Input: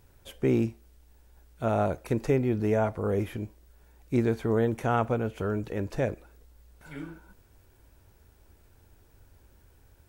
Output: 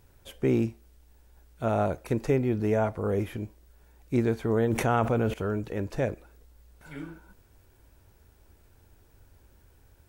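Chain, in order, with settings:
0:04.70–0:05.34: envelope flattener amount 70%

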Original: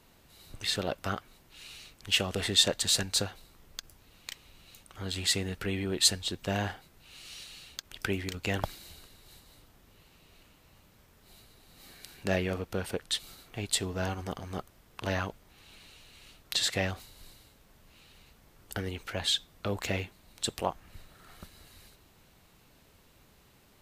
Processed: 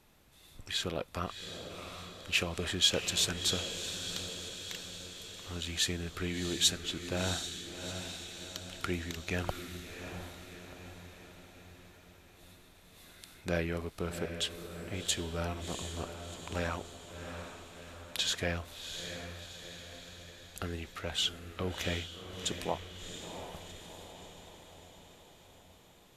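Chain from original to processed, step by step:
speed change −9%
feedback delay with all-pass diffusion 710 ms, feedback 57%, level −8 dB
level −3.5 dB

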